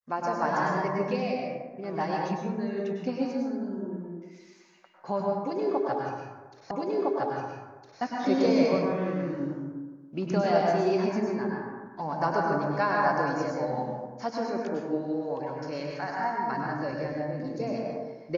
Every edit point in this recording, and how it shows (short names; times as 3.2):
6.71 repeat of the last 1.31 s